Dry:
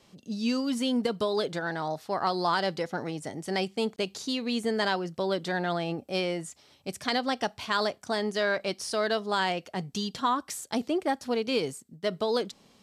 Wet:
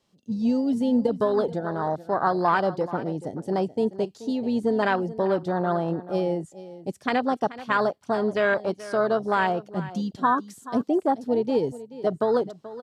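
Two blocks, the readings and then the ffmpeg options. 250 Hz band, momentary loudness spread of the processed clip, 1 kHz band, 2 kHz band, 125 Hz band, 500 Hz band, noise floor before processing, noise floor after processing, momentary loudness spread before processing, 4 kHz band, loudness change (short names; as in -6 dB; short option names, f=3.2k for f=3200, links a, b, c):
+5.5 dB, 7 LU, +5.0 dB, +2.0 dB, +5.5 dB, +5.5 dB, -61 dBFS, -57 dBFS, 6 LU, -9.0 dB, +4.5 dB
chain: -filter_complex "[0:a]afwtdn=0.0316,equalizer=f=2.3k:w=3.8:g=-4,asplit=2[a][b];[b]aecho=0:1:431:0.158[c];[a][c]amix=inputs=2:normalize=0,volume=5.5dB"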